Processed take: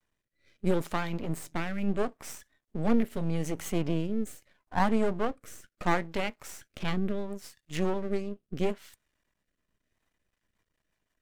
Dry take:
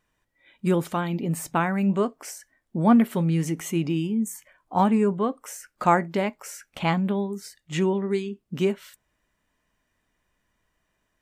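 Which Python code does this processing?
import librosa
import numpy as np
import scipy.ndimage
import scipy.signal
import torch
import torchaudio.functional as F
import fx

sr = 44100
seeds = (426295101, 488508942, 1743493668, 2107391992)

y = fx.vibrato(x, sr, rate_hz=0.62, depth_cents=24.0)
y = np.maximum(y, 0.0)
y = fx.rotary_switch(y, sr, hz=0.75, then_hz=6.0, switch_at_s=9.78)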